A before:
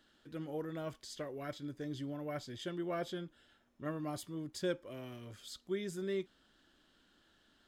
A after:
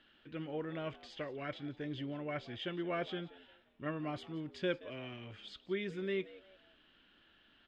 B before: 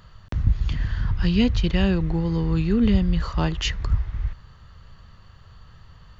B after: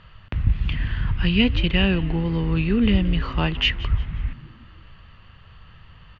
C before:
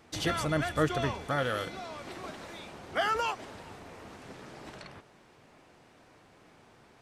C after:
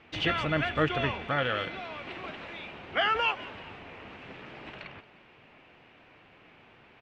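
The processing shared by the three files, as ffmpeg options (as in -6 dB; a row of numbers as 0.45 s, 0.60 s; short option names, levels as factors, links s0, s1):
-filter_complex "[0:a]lowpass=f=2700:t=q:w=3,asplit=4[s0][s1][s2][s3];[s1]adelay=176,afreqshift=90,volume=0.112[s4];[s2]adelay=352,afreqshift=180,volume=0.0394[s5];[s3]adelay=528,afreqshift=270,volume=0.0138[s6];[s0][s4][s5][s6]amix=inputs=4:normalize=0"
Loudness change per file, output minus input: +0.5 LU, +1.0 LU, +2.5 LU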